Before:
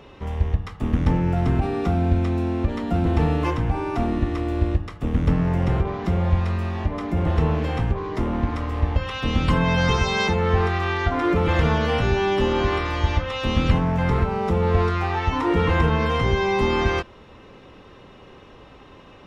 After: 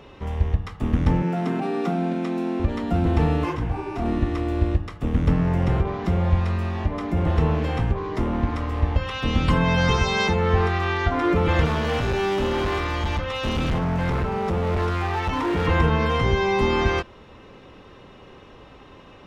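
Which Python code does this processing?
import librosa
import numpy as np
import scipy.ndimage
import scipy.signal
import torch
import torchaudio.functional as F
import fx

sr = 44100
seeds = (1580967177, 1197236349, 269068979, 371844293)

y = fx.steep_highpass(x, sr, hz=150.0, slope=96, at=(1.22, 2.6))
y = fx.detune_double(y, sr, cents=fx.line((3.44, 39.0), (4.04, 52.0)), at=(3.44, 4.04), fade=0.02)
y = fx.overload_stage(y, sr, gain_db=20.0, at=(11.65, 15.67))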